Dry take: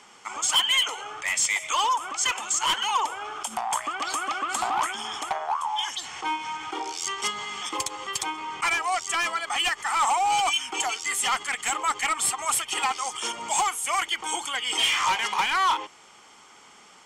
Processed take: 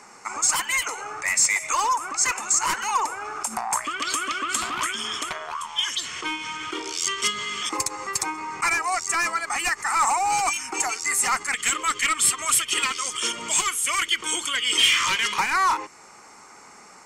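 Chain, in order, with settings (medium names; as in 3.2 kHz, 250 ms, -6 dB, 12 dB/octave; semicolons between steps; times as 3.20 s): LFO notch square 0.13 Hz 810–3200 Hz; dynamic bell 710 Hz, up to -6 dB, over -40 dBFS, Q 1; trim +5.5 dB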